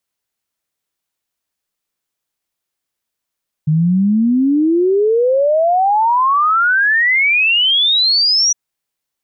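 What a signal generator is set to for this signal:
exponential sine sweep 150 Hz → 5,900 Hz 4.86 s −10 dBFS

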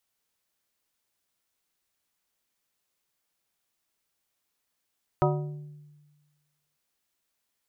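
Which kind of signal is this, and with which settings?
struck glass plate, length 1.55 s, lowest mode 148 Hz, modes 6, decay 1.41 s, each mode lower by 1 dB, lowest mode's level −22 dB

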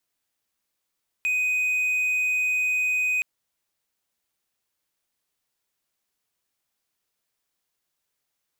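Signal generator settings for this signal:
tone triangle 2,500 Hz −19 dBFS 1.97 s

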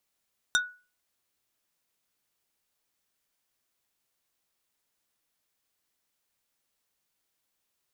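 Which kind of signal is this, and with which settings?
struck wood plate, lowest mode 1,470 Hz, decay 0.34 s, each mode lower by 2 dB, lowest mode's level −19 dB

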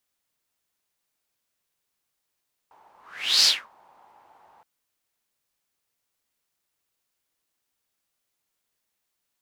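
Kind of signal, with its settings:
pass-by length 1.92 s, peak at 0:00.74, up 0.51 s, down 0.26 s, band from 880 Hz, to 4,800 Hz, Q 5.9, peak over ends 39.5 dB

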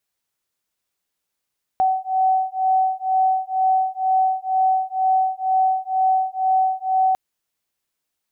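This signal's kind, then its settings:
two tones that beat 755 Hz, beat 2.1 Hz, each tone −19.5 dBFS 5.35 s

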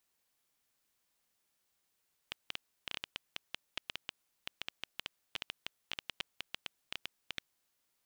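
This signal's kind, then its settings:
Geiger counter clicks 8 per second −19.5 dBFS 5.28 s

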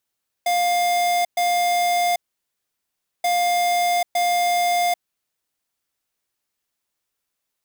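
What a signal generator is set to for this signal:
beeps in groups square 704 Hz, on 0.79 s, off 0.12 s, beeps 2, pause 1.08 s, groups 2, −19.5 dBFS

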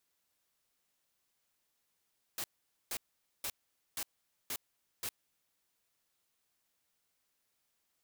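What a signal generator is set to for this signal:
noise bursts white, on 0.06 s, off 0.47 s, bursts 6, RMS −38 dBFS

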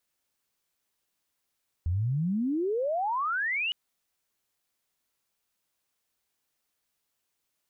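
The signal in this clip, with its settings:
glide logarithmic 80 Hz → 3,000 Hz −24.5 dBFS → −26.5 dBFS 1.86 s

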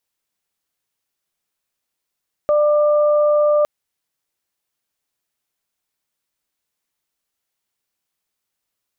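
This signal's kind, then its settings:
steady harmonic partials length 1.16 s, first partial 595 Hz, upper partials −12 dB, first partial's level −12 dB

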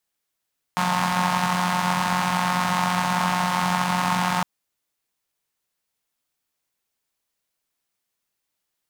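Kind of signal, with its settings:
pulse-train model of a four-cylinder engine, steady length 3.66 s, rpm 5,400, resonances 180/910 Hz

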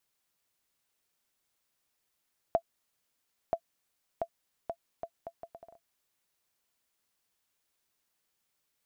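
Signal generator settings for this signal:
bouncing ball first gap 0.98 s, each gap 0.7, 674 Hz, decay 71 ms −15 dBFS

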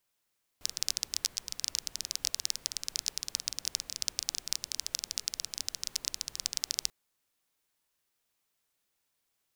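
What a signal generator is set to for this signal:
rain-like ticks over hiss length 6.29 s, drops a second 17, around 5,300 Hz, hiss −19.5 dB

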